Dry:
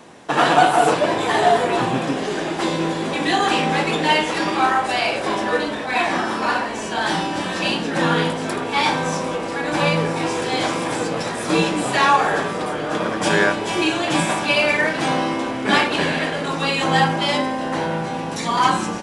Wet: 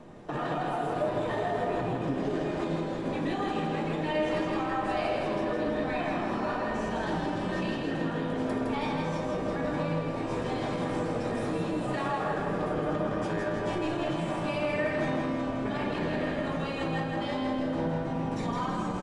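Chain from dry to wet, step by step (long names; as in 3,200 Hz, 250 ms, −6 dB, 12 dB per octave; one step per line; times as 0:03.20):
spectral tilt −3.5 dB per octave
downward compressor, threshold −16 dBFS, peak gain reduction 9.5 dB
brickwall limiter −15 dBFS, peak gain reduction 8.5 dB
tuned comb filter 610 Hz, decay 0.33 s, mix 80%
repeating echo 162 ms, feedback 55%, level −4 dB
level +4 dB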